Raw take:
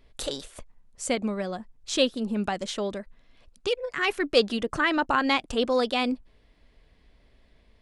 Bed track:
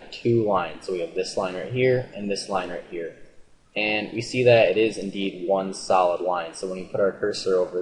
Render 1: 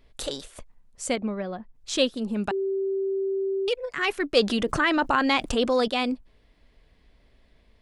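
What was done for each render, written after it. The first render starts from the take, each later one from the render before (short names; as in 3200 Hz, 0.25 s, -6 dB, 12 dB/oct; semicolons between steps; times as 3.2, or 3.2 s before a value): 1.16–1.75 air absorption 270 m; 2.51–3.68 bleep 388 Hz -23.5 dBFS; 4.4–5.88 fast leveller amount 50%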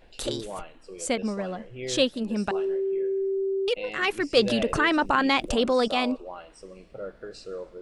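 add bed track -15 dB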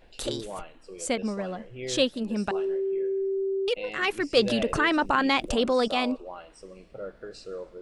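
gain -1 dB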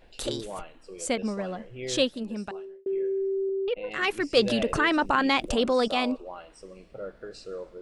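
1.96–2.86 fade out; 3.49–3.91 air absorption 430 m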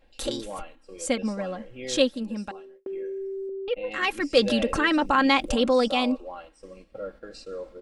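gate -47 dBFS, range -7 dB; comb 3.7 ms, depth 54%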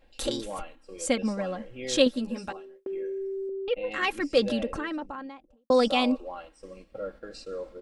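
2.05–2.57 doubler 12 ms -2.5 dB; 3.72–5.7 studio fade out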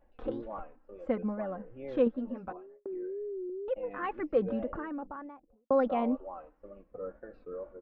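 ladder low-pass 1700 Hz, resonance 20%; wow and flutter 120 cents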